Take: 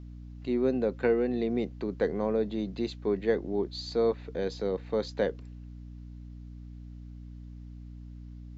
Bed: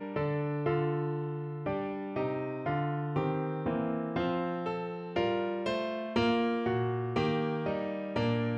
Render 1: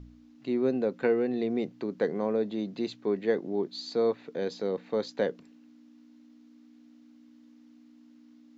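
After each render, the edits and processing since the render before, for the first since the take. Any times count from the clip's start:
hum removal 60 Hz, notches 3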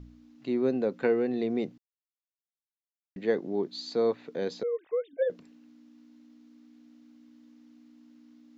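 0:01.78–0:03.16: silence
0:04.63–0:05.30: three sine waves on the formant tracks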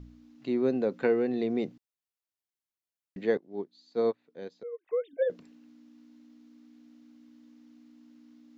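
0:03.37–0:04.88: expander for the loud parts 2.5 to 1, over −37 dBFS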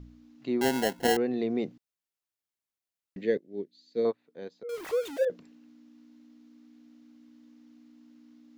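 0:00.61–0:01.17: sample-rate reduction 1,200 Hz
0:03.21–0:04.05: flat-topped bell 1,000 Hz −14.5 dB 1.2 octaves
0:04.69–0:05.25: converter with a step at zero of −35 dBFS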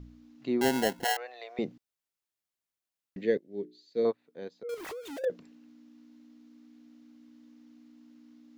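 0:01.04–0:01.59: elliptic high-pass filter 610 Hz, stop band 80 dB
0:03.40–0:04.03: mains-hum notches 60/120/180/240/300/360/420 Hz
0:04.74–0:05.24: downward compressor 12 to 1, threshold −38 dBFS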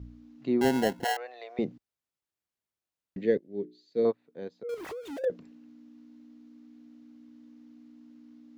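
high-pass filter 46 Hz
spectral tilt −1.5 dB per octave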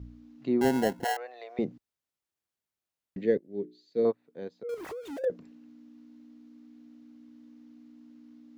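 dynamic equaliser 3,300 Hz, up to −4 dB, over −51 dBFS, Q 0.94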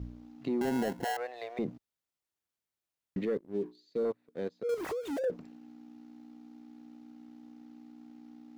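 leveller curve on the samples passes 1
brickwall limiter −25 dBFS, peak gain reduction 11 dB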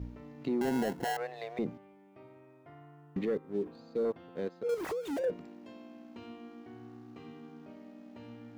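mix in bed −22 dB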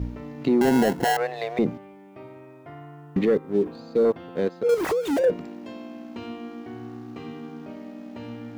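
level +11.5 dB

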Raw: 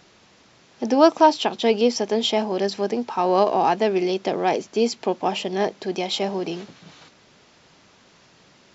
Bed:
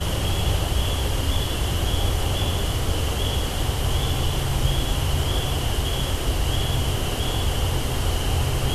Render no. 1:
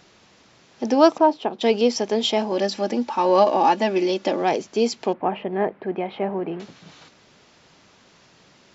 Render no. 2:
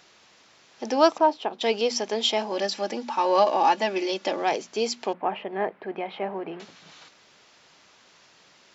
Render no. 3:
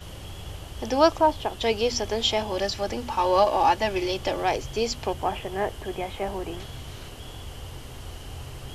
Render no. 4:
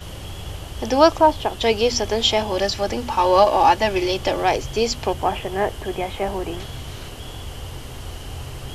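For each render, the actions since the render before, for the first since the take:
0:01.18–0:01.61: resonant band-pass 410 Hz, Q 0.57; 0:02.51–0:04.42: comb filter 3.5 ms, depth 68%; 0:05.13–0:06.60: low-pass filter 2,100 Hz 24 dB per octave
low-shelf EQ 430 Hz −11.5 dB; mains-hum notches 60/120/180/240 Hz
mix in bed −16 dB
level +5.5 dB; brickwall limiter −1 dBFS, peak gain reduction 1 dB

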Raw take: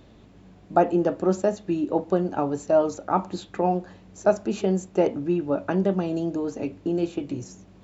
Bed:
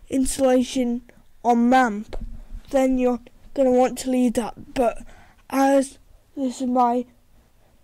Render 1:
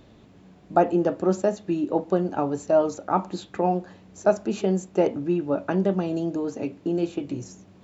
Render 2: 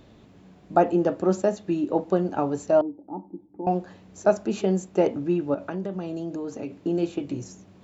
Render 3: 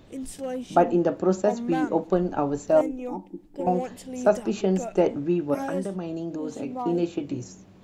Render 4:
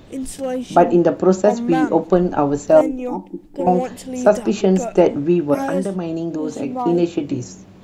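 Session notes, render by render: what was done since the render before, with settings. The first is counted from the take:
hum removal 50 Hz, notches 2
0:02.81–0:03.67: formant resonators in series u; 0:05.54–0:06.78: downward compressor 2.5 to 1, threshold −30 dBFS
mix in bed −14 dB
level +8 dB; brickwall limiter −1 dBFS, peak gain reduction 2 dB

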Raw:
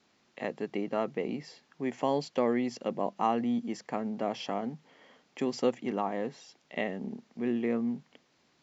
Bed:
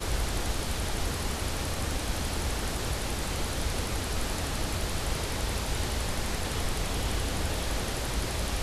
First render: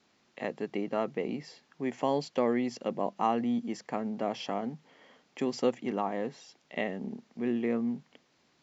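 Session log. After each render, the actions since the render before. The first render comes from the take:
no processing that can be heard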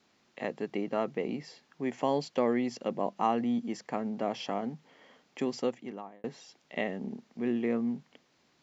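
0:05.39–0:06.24: fade out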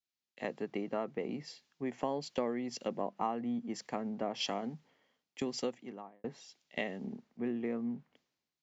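downward compressor 6 to 1, threshold −32 dBFS, peak gain reduction 10 dB
multiband upward and downward expander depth 100%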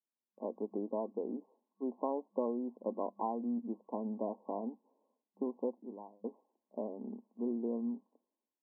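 notch filter 740 Hz, Q 12
brick-wall band-pass 200–1,100 Hz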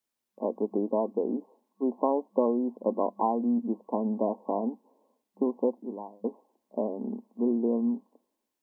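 level +9.5 dB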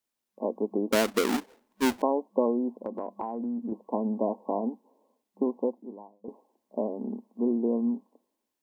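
0:00.92–0:02.02: each half-wave held at its own peak
0:02.79–0:03.72: downward compressor, threshold −29 dBFS
0:05.47–0:06.28: fade out, to −14 dB

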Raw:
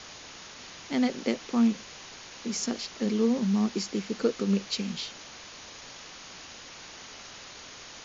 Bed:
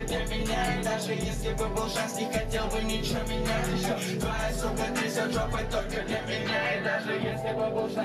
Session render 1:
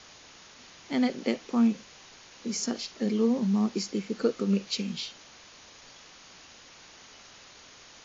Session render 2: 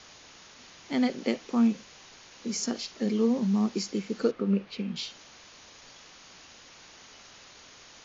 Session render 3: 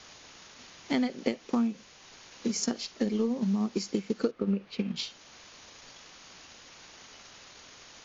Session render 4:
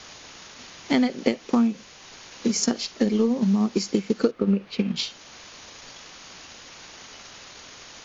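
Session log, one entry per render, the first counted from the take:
noise reduction from a noise print 6 dB
0:04.31–0:04.96: low-pass filter 2,200 Hz
transient designer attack +7 dB, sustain −3 dB; downward compressor 4 to 1, threshold −25 dBFS, peak gain reduction 10.5 dB
level +7 dB

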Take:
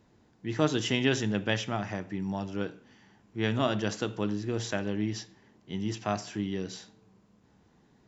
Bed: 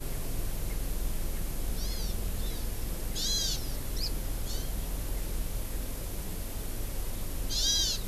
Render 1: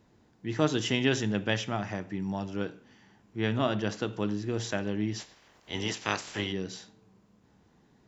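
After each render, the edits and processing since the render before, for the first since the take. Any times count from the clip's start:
0:03.41–0:04.13: high-frequency loss of the air 74 metres
0:05.19–0:06.51: ceiling on every frequency bin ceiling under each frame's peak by 22 dB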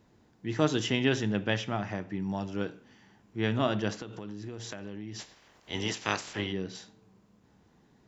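0:00.86–0:02.30: high-frequency loss of the air 71 metres
0:03.97–0:05.19: downward compressor 8 to 1, threshold −36 dBFS
0:06.33–0:06.75: high-frequency loss of the air 120 metres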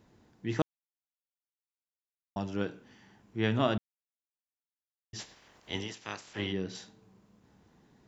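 0:00.62–0:02.36: silence
0:03.78–0:05.13: silence
0:05.74–0:06.45: duck −10 dB, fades 0.14 s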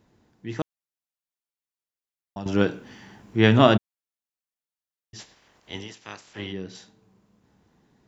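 0:02.46–0:03.77: clip gain +12 dB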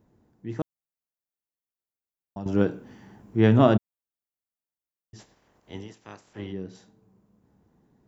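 parametric band 3,600 Hz −12 dB 2.9 octaves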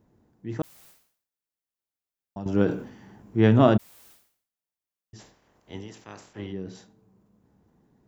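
level that may fall only so fast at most 99 dB per second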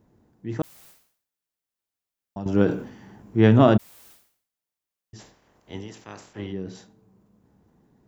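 level +2.5 dB
brickwall limiter −3 dBFS, peak gain reduction 1.5 dB

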